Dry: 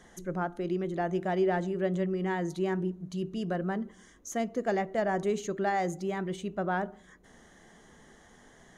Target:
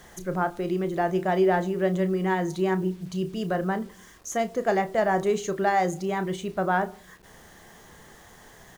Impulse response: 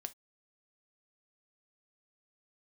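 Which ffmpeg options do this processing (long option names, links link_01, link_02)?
-filter_complex "[0:a]equalizer=frequency=100:width_type=o:width=0.67:gain=4,equalizer=frequency=250:width_type=o:width=0.67:gain=-6,equalizer=frequency=1000:width_type=o:width=0.67:gain=3,acrusher=bits=9:mix=0:aa=0.000001,asplit=2[link_01][link_02];[link_02]adelay=32,volume=-12dB[link_03];[link_01][link_03]amix=inputs=2:normalize=0,volume=5.5dB"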